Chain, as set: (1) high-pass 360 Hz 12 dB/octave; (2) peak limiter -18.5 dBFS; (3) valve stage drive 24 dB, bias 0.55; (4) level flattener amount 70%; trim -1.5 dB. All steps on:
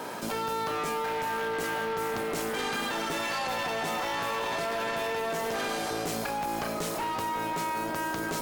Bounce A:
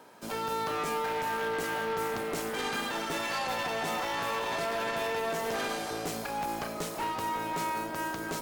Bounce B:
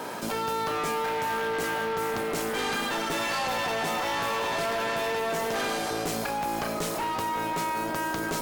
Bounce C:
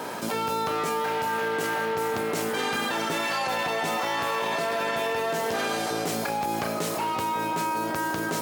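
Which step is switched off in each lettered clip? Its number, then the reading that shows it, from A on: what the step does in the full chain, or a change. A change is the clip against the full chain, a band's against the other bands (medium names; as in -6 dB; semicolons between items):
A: 4, crest factor change -2.0 dB; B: 2, mean gain reduction 2.0 dB; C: 3, loudness change +3.5 LU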